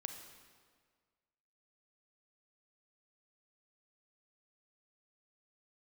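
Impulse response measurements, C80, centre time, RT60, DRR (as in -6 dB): 8.0 dB, 34 ms, 1.7 s, 5.5 dB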